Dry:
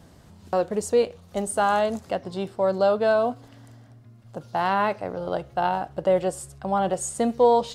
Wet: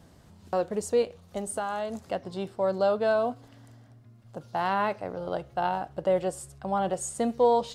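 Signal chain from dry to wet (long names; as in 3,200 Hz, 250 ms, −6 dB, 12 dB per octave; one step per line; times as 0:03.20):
0:01.02–0:02.06: downward compressor, threshold −24 dBFS, peak gain reduction 7 dB
level −4 dB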